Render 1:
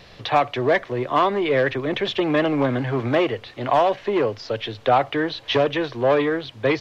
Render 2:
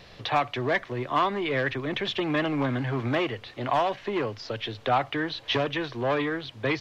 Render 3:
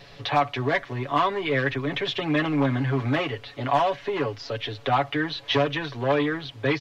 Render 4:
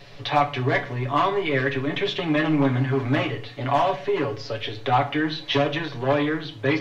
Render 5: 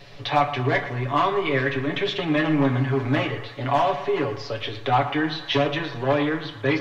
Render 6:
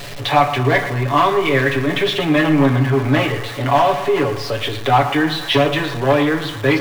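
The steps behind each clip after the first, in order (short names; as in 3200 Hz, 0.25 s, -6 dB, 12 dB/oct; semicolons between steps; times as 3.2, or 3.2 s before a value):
dynamic EQ 500 Hz, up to -7 dB, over -31 dBFS, Q 1.2; gain -3 dB
comb 7.1 ms, depth 77%
shoebox room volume 37 m³, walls mixed, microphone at 0.31 m
narrowing echo 0.116 s, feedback 62%, band-pass 1200 Hz, level -11 dB
zero-crossing step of -34.5 dBFS; gain +6 dB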